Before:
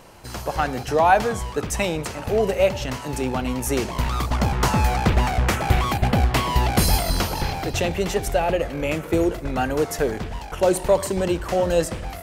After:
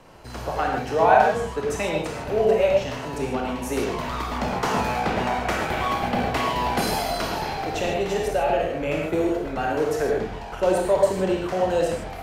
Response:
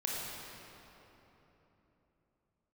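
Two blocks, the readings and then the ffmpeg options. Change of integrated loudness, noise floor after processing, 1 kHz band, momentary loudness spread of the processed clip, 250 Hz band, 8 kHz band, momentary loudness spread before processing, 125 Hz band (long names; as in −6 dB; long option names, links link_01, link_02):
−1.5 dB, −34 dBFS, +0.5 dB, 8 LU, −2.5 dB, −7.0 dB, 7 LU, −9.0 dB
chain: -filter_complex "[0:a]aemphasis=mode=reproduction:type=cd,acrossover=split=210|490|3900[link_01][link_02][link_03][link_04];[link_01]acompressor=threshold=-34dB:ratio=6[link_05];[link_05][link_02][link_03][link_04]amix=inputs=4:normalize=0[link_06];[1:a]atrim=start_sample=2205,afade=type=out:start_time=0.21:duration=0.01,atrim=end_sample=9702[link_07];[link_06][link_07]afir=irnorm=-1:irlink=0,volume=-2.5dB"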